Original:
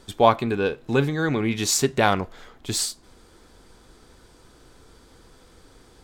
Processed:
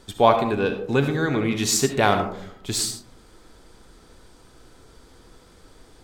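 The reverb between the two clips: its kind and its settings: digital reverb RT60 0.65 s, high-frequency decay 0.3×, pre-delay 30 ms, DRR 6.5 dB

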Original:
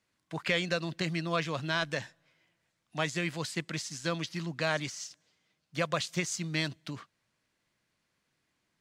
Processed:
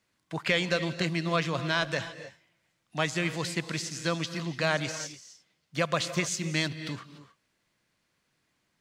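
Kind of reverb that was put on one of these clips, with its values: non-linear reverb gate 0.32 s rising, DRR 11.5 dB; gain +3 dB

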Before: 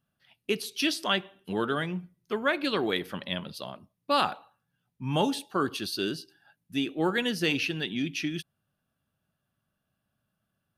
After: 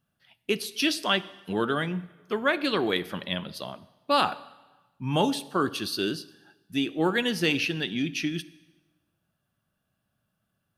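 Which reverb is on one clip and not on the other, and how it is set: plate-style reverb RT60 1.2 s, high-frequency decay 0.9×, DRR 16.5 dB; gain +2 dB

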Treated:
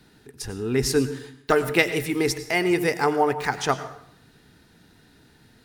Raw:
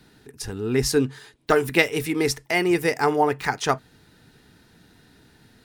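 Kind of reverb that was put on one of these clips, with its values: plate-style reverb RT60 0.7 s, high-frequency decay 0.75×, pre-delay 80 ms, DRR 12 dB; gain -1 dB

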